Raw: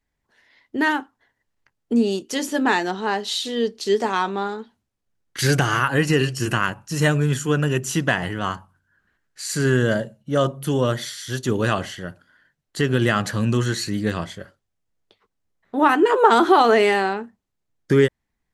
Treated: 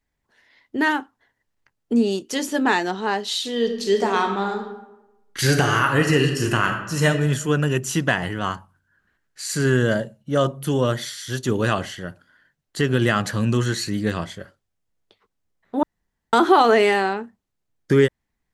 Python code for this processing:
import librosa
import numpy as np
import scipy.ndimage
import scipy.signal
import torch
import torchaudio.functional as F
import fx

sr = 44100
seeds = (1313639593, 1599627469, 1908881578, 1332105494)

y = fx.reverb_throw(x, sr, start_s=3.49, length_s=3.58, rt60_s=0.97, drr_db=4.5)
y = fx.edit(y, sr, fx.room_tone_fill(start_s=15.83, length_s=0.5), tone=tone)